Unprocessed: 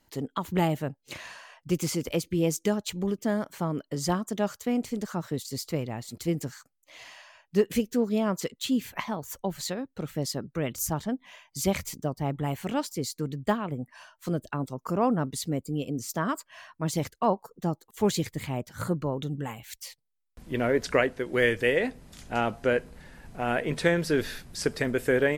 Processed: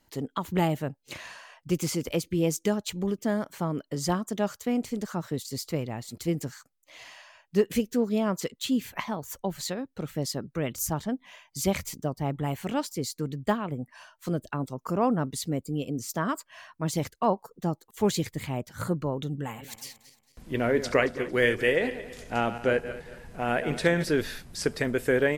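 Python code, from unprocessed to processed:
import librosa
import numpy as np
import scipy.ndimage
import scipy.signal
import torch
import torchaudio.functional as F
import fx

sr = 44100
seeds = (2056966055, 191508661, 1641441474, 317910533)

y = fx.reverse_delay_fb(x, sr, ms=113, feedback_pct=55, wet_db=-11.5, at=(19.42, 24.09))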